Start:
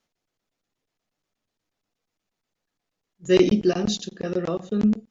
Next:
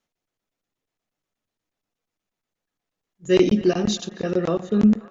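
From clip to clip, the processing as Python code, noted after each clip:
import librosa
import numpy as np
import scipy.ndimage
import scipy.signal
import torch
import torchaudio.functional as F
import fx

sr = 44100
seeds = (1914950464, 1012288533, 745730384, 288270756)

y = fx.peak_eq(x, sr, hz=4700.0, db=-3.0, octaves=0.55)
y = fx.echo_banded(y, sr, ms=267, feedback_pct=71, hz=1300.0, wet_db=-16.5)
y = fx.rider(y, sr, range_db=10, speed_s=2.0)
y = F.gain(torch.from_numpy(y), 2.0).numpy()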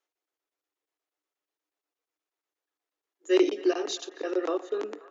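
y = scipy.signal.sosfilt(scipy.signal.cheby1(6, 3, 290.0, 'highpass', fs=sr, output='sos'), x)
y = F.gain(torch.from_numpy(y), -3.0).numpy()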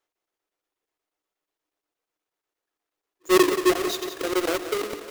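y = fx.halfwave_hold(x, sr)
y = fx.echo_feedback(y, sr, ms=179, feedback_pct=58, wet_db=-11.0)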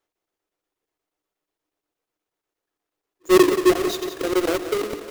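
y = fx.low_shelf(x, sr, hz=440.0, db=7.0)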